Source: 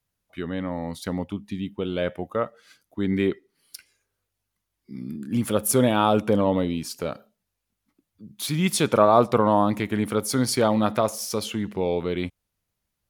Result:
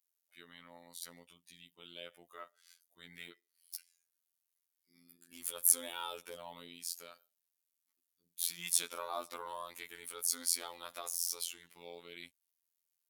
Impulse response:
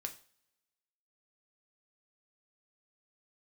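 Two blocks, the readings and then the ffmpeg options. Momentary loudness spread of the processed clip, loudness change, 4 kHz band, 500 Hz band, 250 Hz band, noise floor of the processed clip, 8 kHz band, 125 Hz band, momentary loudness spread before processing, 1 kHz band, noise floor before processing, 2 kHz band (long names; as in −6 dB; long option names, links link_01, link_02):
21 LU, −12.0 dB, −9.5 dB, −27.0 dB, −34.5 dB, below −85 dBFS, −3.0 dB, −37.5 dB, 14 LU, −21.5 dB, −81 dBFS, −15.5 dB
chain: -af "aderivative,afftfilt=real='hypot(re,im)*cos(PI*b)':imag='0':win_size=2048:overlap=0.75,volume=-1dB"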